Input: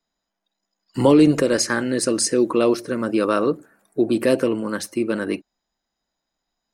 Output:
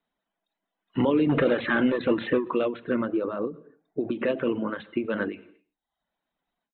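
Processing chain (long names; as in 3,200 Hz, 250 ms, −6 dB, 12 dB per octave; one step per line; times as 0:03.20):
0:01.29–0:02.45: leveller curve on the samples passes 2
downsampling to 8,000 Hz
brickwall limiter −14 dBFS, peak gain reduction 9.5 dB
0:03.12–0:04.01: parametric band 2,600 Hz −14 dB 2.3 octaves
single-tap delay 92 ms −18 dB
reverb whose tail is shaped and stops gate 310 ms falling, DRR 9 dB
reverb reduction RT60 0.61 s
low-shelf EQ 66 Hz −8 dB
every ending faded ahead of time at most 170 dB per second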